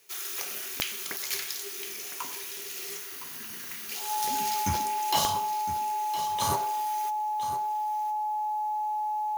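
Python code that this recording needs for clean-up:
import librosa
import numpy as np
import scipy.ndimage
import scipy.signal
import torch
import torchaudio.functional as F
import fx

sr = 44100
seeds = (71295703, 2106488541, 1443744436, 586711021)

y = fx.fix_declick_ar(x, sr, threshold=10.0)
y = fx.notch(y, sr, hz=850.0, q=30.0)
y = fx.fix_echo_inverse(y, sr, delay_ms=1011, level_db=-12.0)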